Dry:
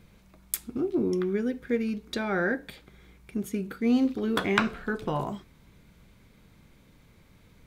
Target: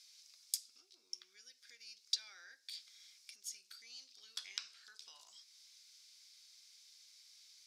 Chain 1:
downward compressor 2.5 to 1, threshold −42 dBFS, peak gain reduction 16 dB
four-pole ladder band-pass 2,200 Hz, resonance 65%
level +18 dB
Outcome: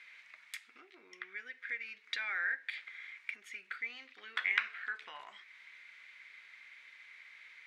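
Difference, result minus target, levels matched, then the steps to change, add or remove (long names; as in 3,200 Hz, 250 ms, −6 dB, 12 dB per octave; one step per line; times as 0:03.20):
2,000 Hz band +16.5 dB
change: four-pole ladder band-pass 5,600 Hz, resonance 65%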